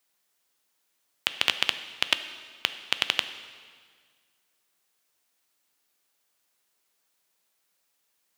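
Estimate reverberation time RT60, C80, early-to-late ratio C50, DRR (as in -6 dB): 1.8 s, 13.0 dB, 11.5 dB, 10.0 dB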